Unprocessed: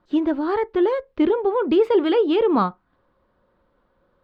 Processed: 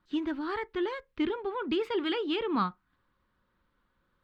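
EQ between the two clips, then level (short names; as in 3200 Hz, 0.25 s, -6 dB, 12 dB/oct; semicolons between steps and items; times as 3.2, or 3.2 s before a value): tilt shelf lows -6.5 dB, about 1400 Hz; bell 590 Hz -13 dB 1.4 oct; high shelf 2600 Hz -10 dB; 0.0 dB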